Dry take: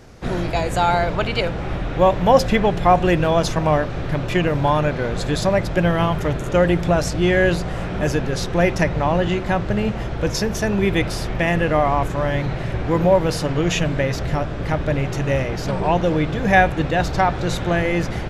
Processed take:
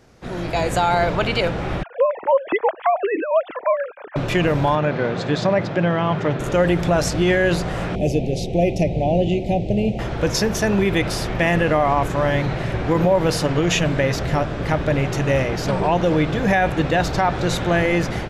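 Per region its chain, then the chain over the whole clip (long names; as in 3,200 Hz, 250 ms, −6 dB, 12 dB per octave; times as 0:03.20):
0:01.83–0:04.16: three sine waves on the formant tracks + low-pass filter 2,600 Hz 24 dB per octave + amplitude tremolo 5.9 Hz, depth 68%
0:04.75–0:06.40: high-pass filter 110 Hz 24 dB per octave + high-frequency loss of the air 140 metres
0:07.95–0:09.99: elliptic band-stop filter 720–2,400 Hz, stop band 80 dB + high-shelf EQ 2,300 Hz −8 dB
whole clip: low-shelf EQ 85 Hz −7 dB; brickwall limiter −11.5 dBFS; automatic gain control gain up to 12 dB; level −6.5 dB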